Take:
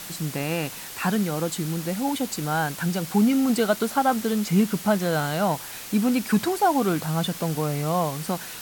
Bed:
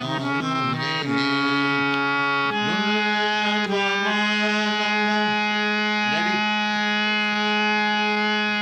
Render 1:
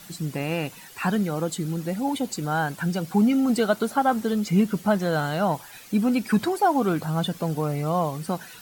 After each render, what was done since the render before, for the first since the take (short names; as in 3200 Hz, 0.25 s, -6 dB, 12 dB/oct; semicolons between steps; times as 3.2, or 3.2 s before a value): denoiser 11 dB, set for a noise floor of -38 dBFS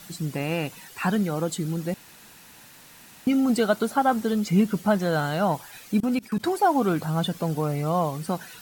1.94–3.27 room tone; 6–6.44 level quantiser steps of 23 dB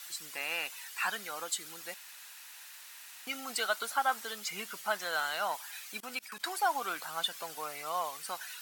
HPF 1300 Hz 12 dB/oct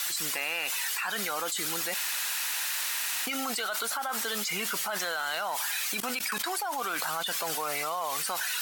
limiter -26 dBFS, peak gain reduction 9 dB; fast leveller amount 100%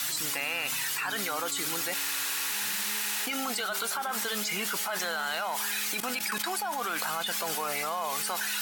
add bed -24.5 dB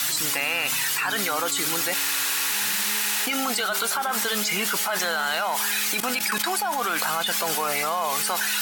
gain +6.5 dB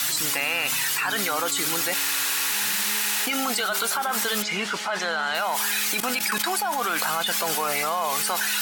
4.42–5.35 air absorption 91 m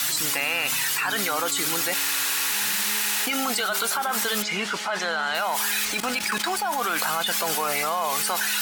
2.87–4.5 block floating point 7-bit; 5.85–6.66 median filter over 3 samples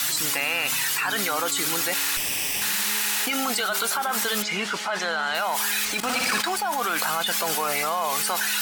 2.17–2.62 minimum comb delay 0.37 ms; 6–6.41 flutter echo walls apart 10.1 m, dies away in 1.2 s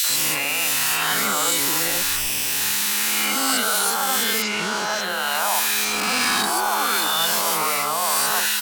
spectral swells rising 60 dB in 1.85 s; three bands offset in time highs, mids, lows 40/90 ms, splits 530/1900 Hz